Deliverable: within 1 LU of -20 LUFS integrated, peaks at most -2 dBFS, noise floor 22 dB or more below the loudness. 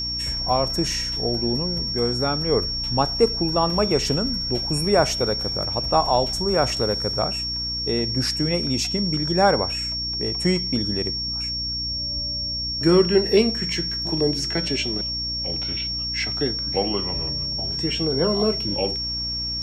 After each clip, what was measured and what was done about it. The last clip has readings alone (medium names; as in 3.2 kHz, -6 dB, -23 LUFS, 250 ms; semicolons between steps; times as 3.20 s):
hum 60 Hz; highest harmonic 300 Hz; hum level -33 dBFS; steady tone 5.5 kHz; tone level -25 dBFS; loudness -22.0 LUFS; peak level -4.0 dBFS; loudness target -20.0 LUFS
-> hum notches 60/120/180/240/300 Hz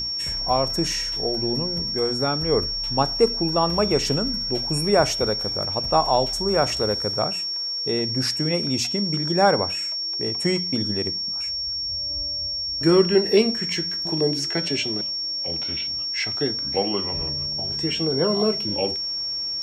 hum not found; steady tone 5.5 kHz; tone level -25 dBFS
-> band-stop 5.5 kHz, Q 30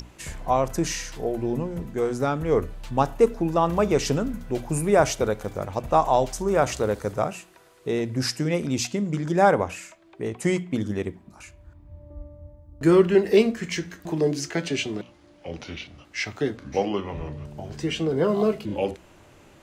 steady tone not found; loudness -24.5 LUFS; peak level -5.5 dBFS; loudness target -20.0 LUFS
-> trim +4.5 dB; peak limiter -2 dBFS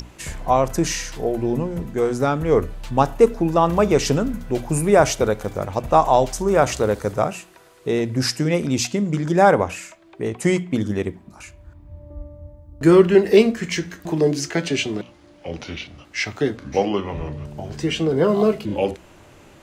loudness -20.0 LUFS; peak level -2.0 dBFS; noise floor -49 dBFS